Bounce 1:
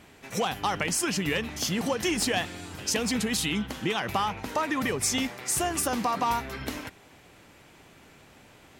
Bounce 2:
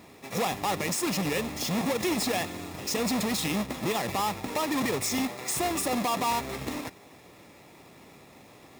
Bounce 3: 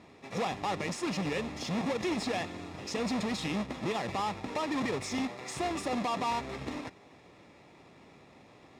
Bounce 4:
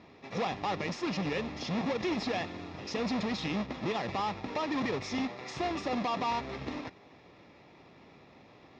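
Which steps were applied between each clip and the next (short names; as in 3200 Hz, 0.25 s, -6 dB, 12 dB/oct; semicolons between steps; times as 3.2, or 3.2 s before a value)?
half-waves squared off; notch comb 1500 Hz; limiter -19.5 dBFS, peak gain reduction 7 dB; gain -1.5 dB
air absorption 91 m; gain -3.5 dB
steep low-pass 5900 Hz 36 dB/oct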